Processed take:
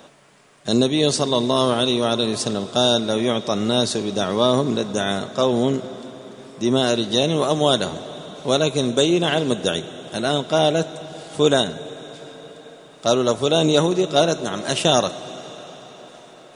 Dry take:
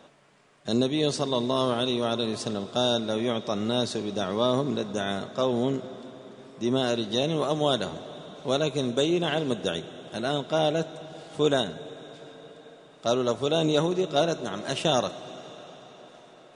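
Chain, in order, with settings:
high-shelf EQ 8,000 Hz +11 dB
level +6.5 dB

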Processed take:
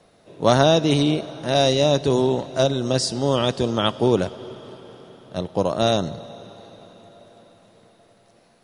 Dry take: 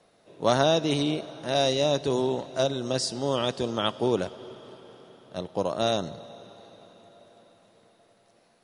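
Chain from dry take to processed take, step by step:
low-shelf EQ 180 Hz +7 dB
level +5 dB

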